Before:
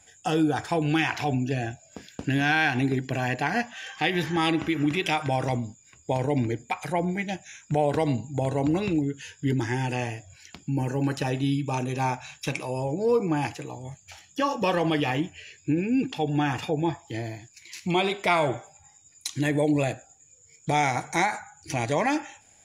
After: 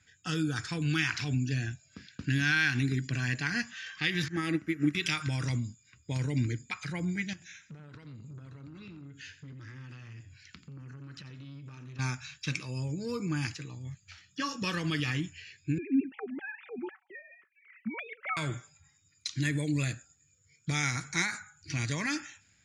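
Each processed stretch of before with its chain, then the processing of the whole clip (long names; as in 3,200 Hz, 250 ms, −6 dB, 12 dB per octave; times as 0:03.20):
0:04.28–0:04.95: drawn EQ curve 130 Hz 0 dB, 190 Hz +5 dB, 700 Hz +10 dB, 1,000 Hz −2 dB, 1,900 Hz +4 dB, 3,600 Hz −10 dB, 11,000 Hz +3 dB + expander for the loud parts 2.5 to 1, over −27 dBFS
0:07.33–0:11.99: downward compressor 16 to 1, threshold −35 dBFS + repeating echo 87 ms, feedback 32%, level −13.5 dB + saturating transformer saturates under 1,300 Hz
0:15.78–0:18.37: three sine waves on the formant tracks + Butterworth low-pass 2,400 Hz + comb filter 5.3 ms, depth 31%
whole clip: high-pass filter 73 Hz; low-pass that shuts in the quiet parts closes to 2,900 Hz, open at −19.5 dBFS; drawn EQ curve 120 Hz 0 dB, 260 Hz −6 dB, 780 Hz −24 dB, 1,300 Hz −2 dB, 3,200 Hz −4 dB, 4,600 Hz +5 dB, 12,000 Hz −4 dB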